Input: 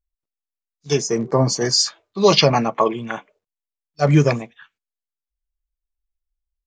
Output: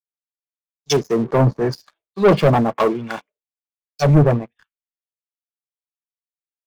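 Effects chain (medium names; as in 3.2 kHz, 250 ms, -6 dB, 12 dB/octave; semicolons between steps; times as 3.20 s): low-pass that closes with the level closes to 960 Hz, closed at -15 dBFS; waveshaping leveller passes 3; three bands expanded up and down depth 100%; trim -6 dB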